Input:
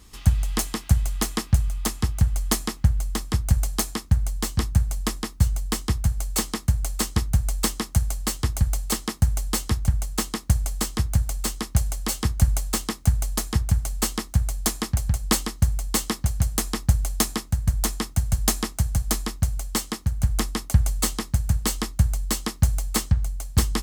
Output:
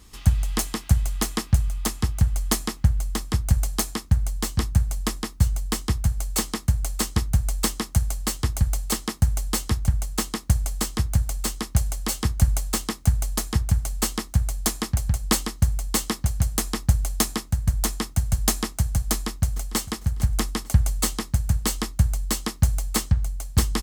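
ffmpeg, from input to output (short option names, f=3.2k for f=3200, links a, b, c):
-filter_complex "[0:a]asplit=2[a][b];[b]afade=t=in:st=19.11:d=0.01,afade=t=out:st=19.8:d=0.01,aecho=0:1:450|900|1350:0.141254|0.0494388|0.0173036[c];[a][c]amix=inputs=2:normalize=0"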